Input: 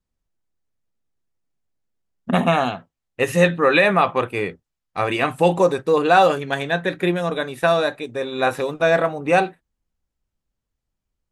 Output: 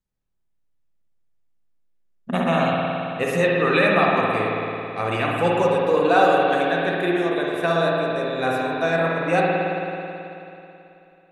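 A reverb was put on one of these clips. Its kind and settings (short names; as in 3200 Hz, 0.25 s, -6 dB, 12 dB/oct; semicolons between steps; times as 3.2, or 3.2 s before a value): spring tank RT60 3 s, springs 54 ms, chirp 25 ms, DRR -3 dB; gain -5.5 dB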